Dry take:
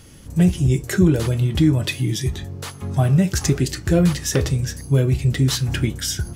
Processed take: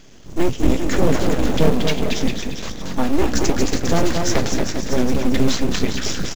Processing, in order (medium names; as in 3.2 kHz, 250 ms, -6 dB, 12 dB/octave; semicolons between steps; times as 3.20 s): bouncing-ball echo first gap 230 ms, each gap 0.75×, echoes 5; full-wave rectifier; resampled via 16 kHz; in parallel at -3.5 dB: short-mantissa float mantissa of 2-bit; on the sum: trim -3 dB